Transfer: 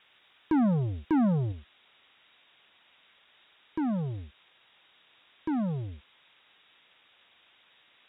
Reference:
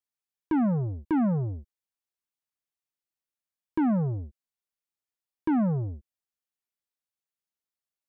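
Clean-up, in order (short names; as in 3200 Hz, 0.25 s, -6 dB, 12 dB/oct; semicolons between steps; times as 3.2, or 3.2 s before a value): noise print and reduce 29 dB; gain 0 dB, from 1.52 s +5 dB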